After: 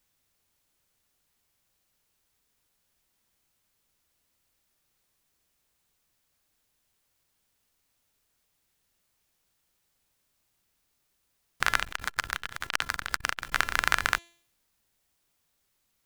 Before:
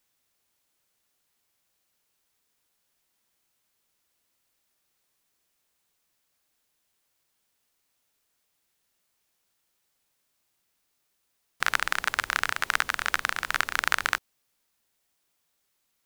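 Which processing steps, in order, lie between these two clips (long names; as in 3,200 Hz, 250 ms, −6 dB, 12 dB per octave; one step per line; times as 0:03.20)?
low-shelf EQ 140 Hz +11 dB
hum removal 341 Hz, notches 35
0:11.82–0:13.52: saturating transformer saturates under 3,500 Hz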